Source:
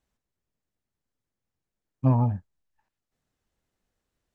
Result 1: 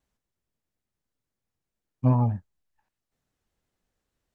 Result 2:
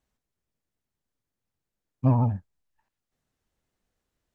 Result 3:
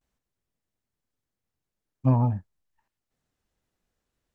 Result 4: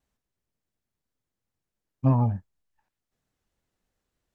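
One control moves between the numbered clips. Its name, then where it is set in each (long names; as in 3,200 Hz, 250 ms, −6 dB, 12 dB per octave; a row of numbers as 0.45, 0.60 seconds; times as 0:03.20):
pitch vibrato, speed: 5.2, 14, 0.46, 3.4 Hertz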